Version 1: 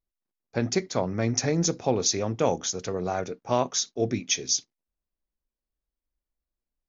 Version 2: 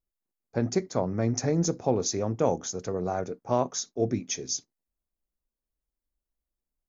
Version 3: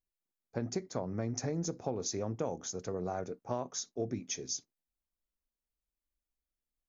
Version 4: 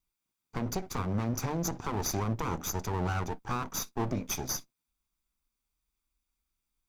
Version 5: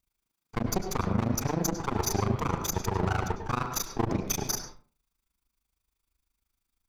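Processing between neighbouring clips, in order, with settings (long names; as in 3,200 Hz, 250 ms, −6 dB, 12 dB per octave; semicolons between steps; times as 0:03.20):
parametric band 3,100 Hz −11.5 dB 1.7 octaves; notch filter 5,700 Hz, Q 30
downward compressor, threshold −25 dBFS, peak gain reduction 7.5 dB; level −5.5 dB
lower of the sound and its delayed copy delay 0.85 ms; brickwall limiter −30.5 dBFS, peak gain reduction 6 dB; level +8.5 dB
amplitude modulation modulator 26 Hz, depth 100%; convolution reverb RT60 0.40 s, pre-delay 93 ms, DRR 7 dB; level +7 dB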